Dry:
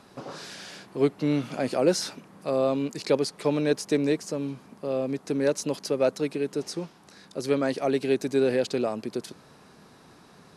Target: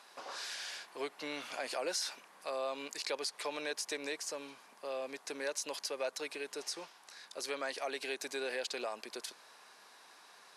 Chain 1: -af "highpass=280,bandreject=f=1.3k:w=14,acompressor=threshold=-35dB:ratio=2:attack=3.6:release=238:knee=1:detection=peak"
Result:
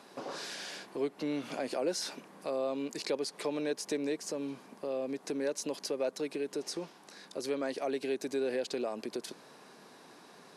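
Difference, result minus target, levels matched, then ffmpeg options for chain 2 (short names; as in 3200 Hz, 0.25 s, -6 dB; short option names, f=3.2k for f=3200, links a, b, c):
250 Hz band +9.0 dB
-af "highpass=920,bandreject=f=1.3k:w=14,acompressor=threshold=-35dB:ratio=2:attack=3.6:release=238:knee=1:detection=peak"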